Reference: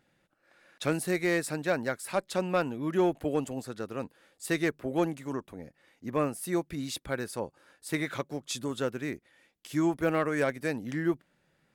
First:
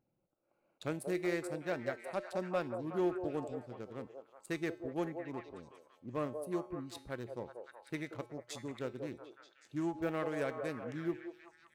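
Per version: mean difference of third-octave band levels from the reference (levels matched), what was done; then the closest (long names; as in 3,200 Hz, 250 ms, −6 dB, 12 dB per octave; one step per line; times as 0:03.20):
5.5 dB: adaptive Wiener filter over 25 samples
tuned comb filter 120 Hz, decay 0.52 s, harmonics odd, mix 60%
on a send: echo through a band-pass that steps 186 ms, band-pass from 550 Hz, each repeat 0.7 octaves, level −3 dB
on the sum: level −1.5 dB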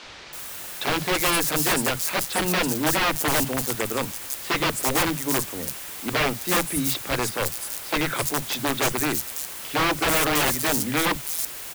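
13.0 dB: in parallel at −6.5 dB: bit-depth reduction 6 bits, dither triangular
on the sum: wrap-around overflow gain 22 dB
three-band delay without the direct sound mids, lows, highs 40/330 ms, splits 190/5,100 Hz
level +7 dB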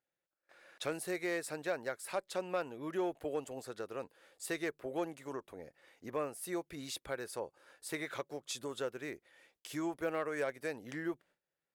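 3.0 dB: noise gate with hold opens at −56 dBFS
low shelf with overshoot 320 Hz −7 dB, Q 1.5
downward compressor 1.5 to 1, threshold −48 dBFS, peak gain reduction 9.5 dB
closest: third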